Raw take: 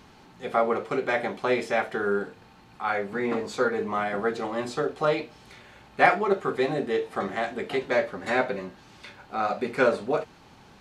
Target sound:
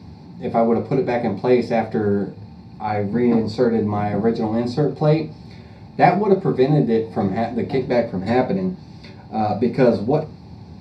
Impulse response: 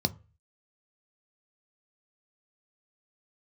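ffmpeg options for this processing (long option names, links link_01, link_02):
-filter_complex "[0:a]lowshelf=frequency=250:gain=9.5[link_01];[1:a]atrim=start_sample=2205[link_02];[link_01][link_02]afir=irnorm=-1:irlink=0,volume=-6.5dB"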